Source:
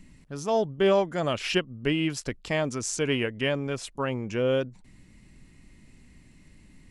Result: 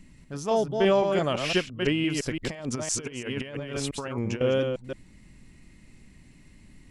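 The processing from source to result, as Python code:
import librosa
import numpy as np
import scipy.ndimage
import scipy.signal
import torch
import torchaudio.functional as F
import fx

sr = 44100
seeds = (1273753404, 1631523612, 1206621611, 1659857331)

y = fx.reverse_delay(x, sr, ms=170, wet_db=-5)
y = fx.over_compress(y, sr, threshold_db=-31.0, ratio=-0.5, at=(2.42, 4.41))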